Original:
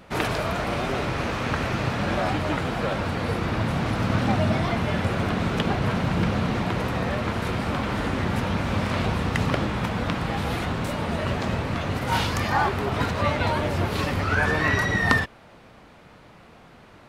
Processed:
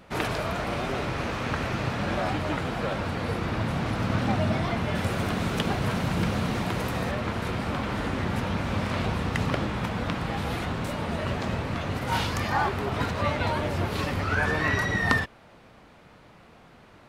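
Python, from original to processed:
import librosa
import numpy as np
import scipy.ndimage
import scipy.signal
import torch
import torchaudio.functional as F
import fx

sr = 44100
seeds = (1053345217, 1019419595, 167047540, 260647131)

y = fx.high_shelf(x, sr, hz=6600.0, db=11.5, at=(4.95, 7.11))
y = F.gain(torch.from_numpy(y), -3.0).numpy()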